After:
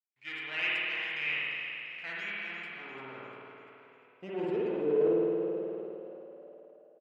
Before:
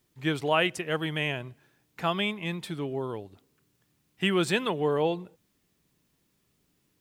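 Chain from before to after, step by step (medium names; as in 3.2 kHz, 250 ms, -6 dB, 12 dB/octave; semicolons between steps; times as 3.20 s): comb filter that takes the minimum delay 0.4 ms; expander -60 dBFS; band-pass sweep 2.3 kHz -> 400 Hz, 1.77–4.79 s; frequency-shifting echo 346 ms, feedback 50%, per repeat +30 Hz, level -10.5 dB; spring tank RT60 2.4 s, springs 53 ms, chirp 55 ms, DRR -6 dB; decay stretcher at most 22 dB/s; trim -6 dB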